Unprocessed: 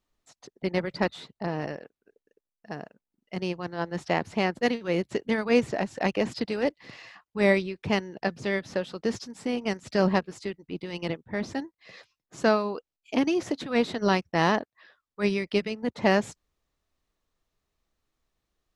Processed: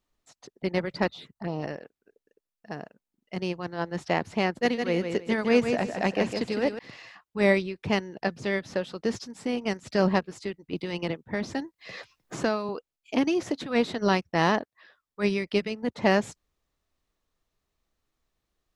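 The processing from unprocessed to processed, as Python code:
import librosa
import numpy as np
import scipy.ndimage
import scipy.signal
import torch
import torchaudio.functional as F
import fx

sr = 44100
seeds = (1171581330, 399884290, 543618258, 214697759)

y = fx.env_phaser(x, sr, low_hz=250.0, high_hz=1700.0, full_db=-26.0, at=(1.11, 1.62), fade=0.02)
y = fx.echo_feedback(y, sr, ms=157, feedback_pct=23, wet_db=-6.5, at=(4.49, 6.79))
y = fx.band_squash(y, sr, depth_pct=70, at=(10.73, 12.69))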